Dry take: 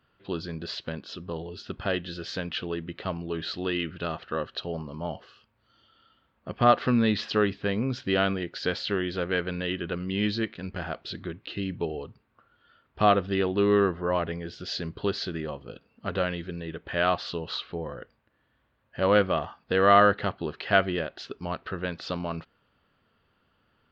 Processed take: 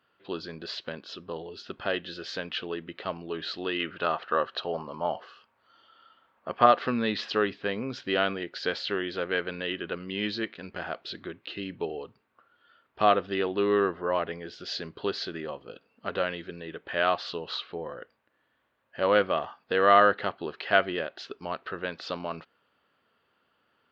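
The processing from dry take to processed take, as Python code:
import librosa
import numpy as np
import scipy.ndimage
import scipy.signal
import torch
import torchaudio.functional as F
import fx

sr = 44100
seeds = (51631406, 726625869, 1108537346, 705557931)

y = fx.peak_eq(x, sr, hz=1000.0, db=7.5, octaves=1.9, at=(3.8, 6.66))
y = fx.highpass(y, sr, hz=180.0, slope=6)
y = fx.bass_treble(y, sr, bass_db=-7, treble_db=-2)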